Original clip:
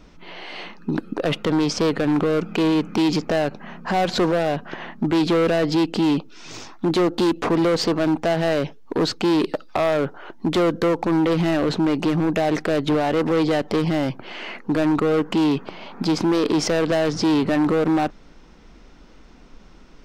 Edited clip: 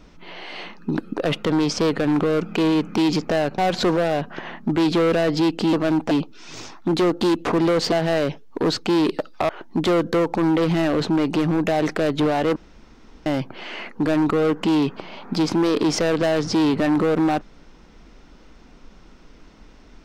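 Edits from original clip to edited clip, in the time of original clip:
0:03.58–0:03.93: remove
0:07.89–0:08.27: move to 0:06.08
0:09.84–0:10.18: remove
0:13.25–0:13.95: fill with room tone

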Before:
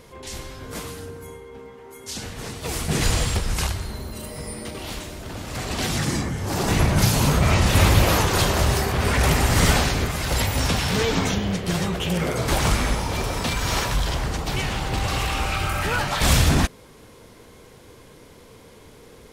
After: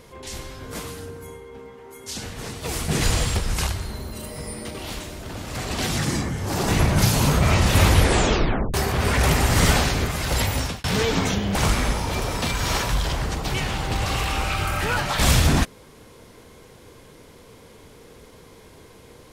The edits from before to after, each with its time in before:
0:07.87: tape stop 0.87 s
0:10.53–0:10.84: fade out
0:11.55–0:12.57: remove

